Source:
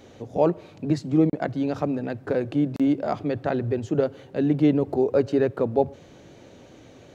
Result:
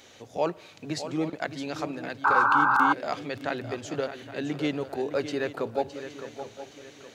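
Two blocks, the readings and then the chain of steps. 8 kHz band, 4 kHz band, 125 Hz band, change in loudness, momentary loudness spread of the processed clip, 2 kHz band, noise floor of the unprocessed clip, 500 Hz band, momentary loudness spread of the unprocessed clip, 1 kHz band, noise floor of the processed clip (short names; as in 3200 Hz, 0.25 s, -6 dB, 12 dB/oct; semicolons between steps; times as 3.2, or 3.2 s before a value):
n/a, +6.0 dB, -11.5 dB, -3.0 dB, 19 LU, +12.0 dB, -49 dBFS, -7.0 dB, 7 LU, +8.0 dB, -52 dBFS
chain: tilt shelf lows -9.5 dB, about 870 Hz; swung echo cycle 0.818 s, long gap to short 3:1, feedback 35%, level -10.5 dB; painted sound noise, 2.24–2.93, 770–1600 Hz -18 dBFS; gain -3 dB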